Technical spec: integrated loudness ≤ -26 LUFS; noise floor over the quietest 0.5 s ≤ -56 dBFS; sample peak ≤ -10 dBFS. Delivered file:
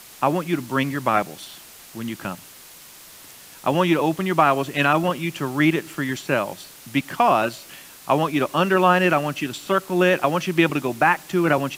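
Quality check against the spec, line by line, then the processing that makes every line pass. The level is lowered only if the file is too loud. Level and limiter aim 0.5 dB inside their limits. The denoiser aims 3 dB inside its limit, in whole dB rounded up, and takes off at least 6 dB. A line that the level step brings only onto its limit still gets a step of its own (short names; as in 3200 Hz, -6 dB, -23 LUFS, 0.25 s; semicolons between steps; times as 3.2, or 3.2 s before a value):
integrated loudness -21.0 LUFS: fail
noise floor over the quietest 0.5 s -45 dBFS: fail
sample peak -5.0 dBFS: fail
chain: denoiser 9 dB, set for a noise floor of -45 dBFS; gain -5.5 dB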